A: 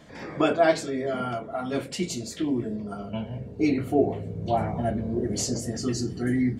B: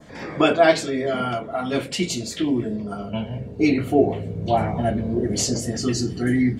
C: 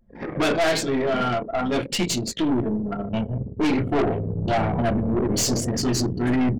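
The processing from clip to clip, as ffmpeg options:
-af "adynamicequalizer=threshold=0.00501:dfrequency=3000:dqfactor=1.1:tfrequency=3000:tqfactor=1.1:attack=5:release=100:ratio=0.375:range=2.5:mode=boostabove:tftype=bell,volume=4.5dB"
-af "anlmdn=39.8,aeval=exprs='(tanh(14.1*val(0)+0.3)-tanh(0.3))/14.1':c=same,volume=5dB"

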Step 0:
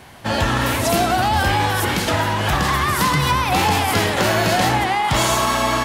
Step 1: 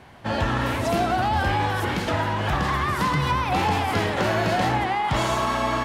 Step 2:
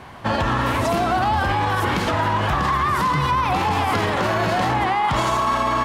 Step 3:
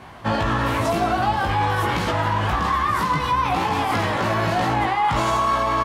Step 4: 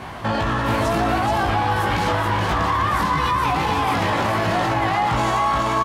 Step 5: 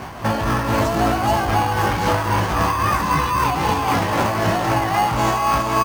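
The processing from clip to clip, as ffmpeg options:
-af "lowpass=f=2.4k:p=1,volume=-4dB"
-af "equalizer=f=1.1k:w=3.4:g=6.5,alimiter=limit=-18.5dB:level=0:latency=1:release=67,volume=6.5dB"
-filter_complex "[0:a]asplit=2[a][b];[b]adelay=18,volume=-3dB[c];[a][c]amix=inputs=2:normalize=0,volume=-3dB"
-af "alimiter=limit=-22dB:level=0:latency=1,aecho=1:1:427:0.631,volume=8dB"
-filter_complex "[0:a]aexciter=amount=1.4:drive=3.4:freq=5.8k,asplit=2[a][b];[b]acrusher=samples=12:mix=1:aa=0.000001,volume=-6dB[c];[a][c]amix=inputs=2:normalize=0,tremolo=f=3.8:d=0.39"

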